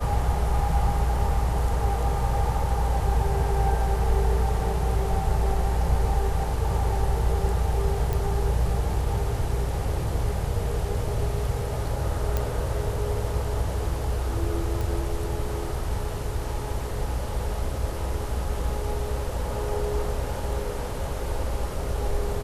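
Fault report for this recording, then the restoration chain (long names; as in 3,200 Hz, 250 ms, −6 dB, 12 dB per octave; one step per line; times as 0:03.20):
0:08.13: click
0:12.37: click −12 dBFS
0:14.81: click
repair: click removal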